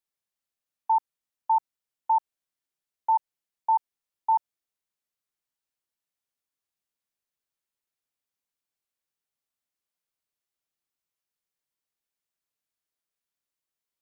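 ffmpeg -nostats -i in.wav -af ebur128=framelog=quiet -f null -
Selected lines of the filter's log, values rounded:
Integrated loudness:
  I:         -27.4 LUFS
  Threshold: -37.8 LUFS
Loudness range:
  LRA:         7.0 LU
  Threshold: -50.7 LUFS
  LRA low:   -35.6 LUFS
  LRA high:  -28.7 LUFS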